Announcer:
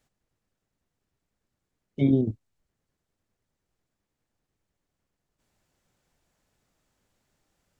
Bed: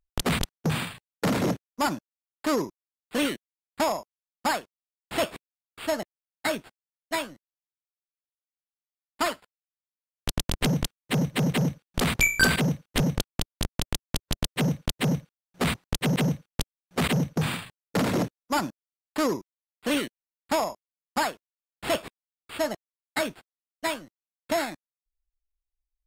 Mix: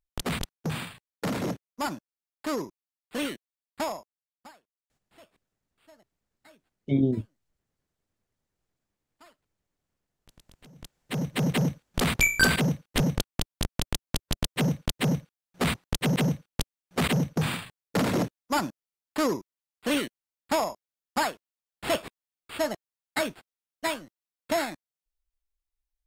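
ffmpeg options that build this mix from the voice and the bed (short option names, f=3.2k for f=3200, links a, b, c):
-filter_complex "[0:a]adelay=4900,volume=-2dB[a];[1:a]volume=23.5dB,afade=t=out:st=3.79:d=0.73:silence=0.0630957,afade=t=in:st=10.75:d=0.76:silence=0.0375837[b];[a][b]amix=inputs=2:normalize=0"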